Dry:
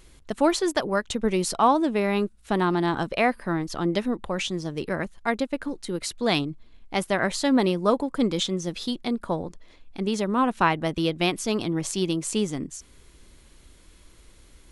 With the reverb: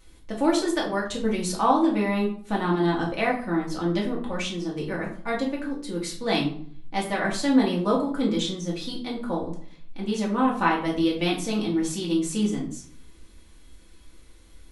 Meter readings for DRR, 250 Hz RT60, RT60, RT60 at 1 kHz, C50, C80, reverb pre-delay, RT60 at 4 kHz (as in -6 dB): -4.0 dB, 0.65 s, 0.55 s, 0.55 s, 7.5 dB, 12.0 dB, 3 ms, 0.35 s